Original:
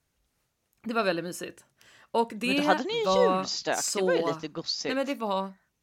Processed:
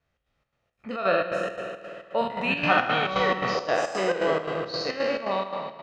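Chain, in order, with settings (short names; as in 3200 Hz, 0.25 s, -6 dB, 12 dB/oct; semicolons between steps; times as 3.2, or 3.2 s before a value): spectral trails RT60 1.52 s; LPF 2900 Hz 12 dB/oct; low shelf 320 Hz -4 dB; comb 1.6 ms, depth 31%; spring tank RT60 2.6 s, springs 51 ms, chirp 55 ms, DRR 5 dB; chopper 3.8 Hz, depth 60%, duty 65%; 2.21–3.55 graphic EQ 125/500/2000 Hz +11/-7/+4 dB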